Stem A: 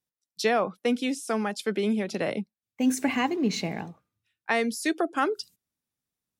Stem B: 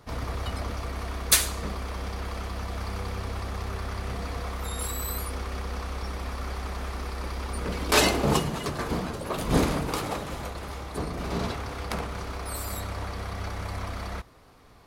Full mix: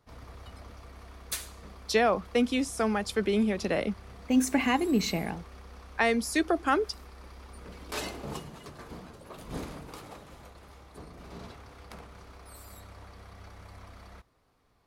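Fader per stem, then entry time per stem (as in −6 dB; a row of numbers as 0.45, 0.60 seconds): 0.0, −15.0 decibels; 1.50, 0.00 seconds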